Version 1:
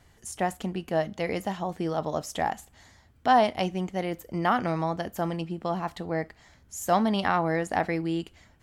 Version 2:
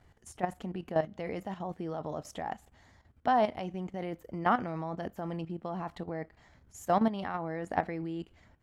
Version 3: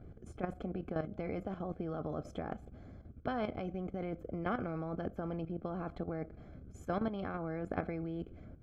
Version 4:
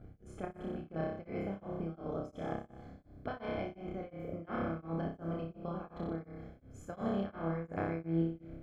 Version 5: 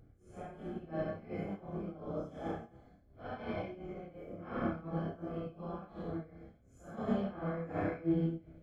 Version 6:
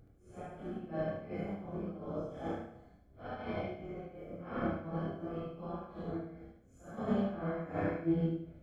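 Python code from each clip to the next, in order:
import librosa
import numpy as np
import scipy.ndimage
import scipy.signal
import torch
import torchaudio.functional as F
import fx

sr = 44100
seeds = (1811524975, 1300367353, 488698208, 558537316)

y1 = fx.high_shelf(x, sr, hz=3200.0, db=-11.5)
y1 = fx.level_steps(y1, sr, step_db=12)
y2 = np.convolve(y1, np.full(47, 1.0 / 47))[:len(y1)]
y2 = fx.spectral_comp(y2, sr, ratio=2.0)
y2 = y2 * 10.0 ** (2.0 / 20.0)
y3 = fx.room_flutter(y2, sr, wall_m=5.2, rt60_s=0.92)
y3 = y3 * np.abs(np.cos(np.pi * 2.8 * np.arange(len(y3)) / sr))
y3 = y3 * 10.0 ** (-1.5 / 20.0)
y4 = fx.phase_scramble(y3, sr, seeds[0], window_ms=200)
y4 = fx.upward_expand(y4, sr, threshold_db=-53.0, expansion=1.5)
y4 = y4 * 10.0 ** (3.0 / 20.0)
y5 = fx.echo_feedback(y4, sr, ms=75, feedback_pct=39, wet_db=-7)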